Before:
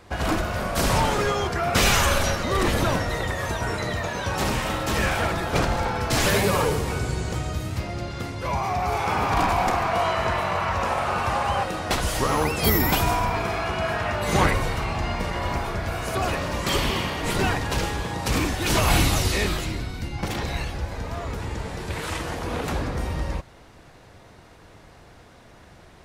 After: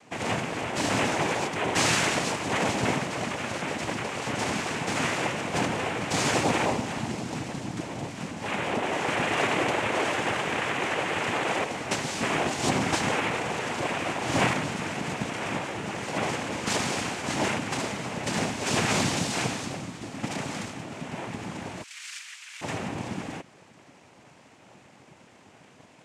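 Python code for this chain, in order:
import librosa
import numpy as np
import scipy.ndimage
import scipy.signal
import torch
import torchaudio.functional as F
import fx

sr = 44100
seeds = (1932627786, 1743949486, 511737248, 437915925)

y = fx.noise_vocoder(x, sr, seeds[0], bands=4)
y = fx.bessel_highpass(y, sr, hz=2400.0, order=6, at=(21.82, 22.61), fade=0.02)
y = y * librosa.db_to_amplitude(-3.0)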